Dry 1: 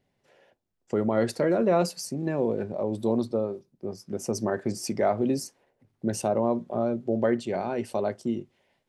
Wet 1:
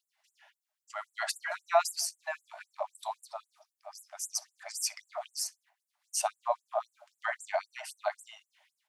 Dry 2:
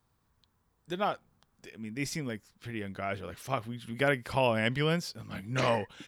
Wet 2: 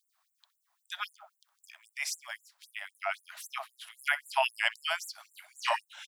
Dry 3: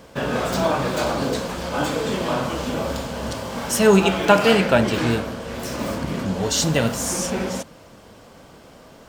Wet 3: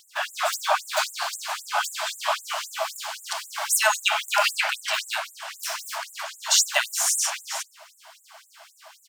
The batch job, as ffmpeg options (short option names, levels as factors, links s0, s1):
-filter_complex "[0:a]asplit=2[s0][s1];[s1]adelay=63,lowpass=f=1100:p=1,volume=0.251,asplit=2[s2][s3];[s3]adelay=63,lowpass=f=1100:p=1,volume=0.46,asplit=2[s4][s5];[s5]adelay=63,lowpass=f=1100:p=1,volume=0.46,asplit=2[s6][s7];[s7]adelay=63,lowpass=f=1100:p=1,volume=0.46,asplit=2[s8][s9];[s9]adelay=63,lowpass=f=1100:p=1,volume=0.46[s10];[s0][s2][s4][s6][s8][s10]amix=inputs=6:normalize=0,afftfilt=real='re*gte(b*sr/1024,580*pow(7200/580,0.5+0.5*sin(2*PI*3.8*pts/sr)))':imag='im*gte(b*sr/1024,580*pow(7200/580,0.5+0.5*sin(2*PI*3.8*pts/sr)))':win_size=1024:overlap=0.75,volume=1.58"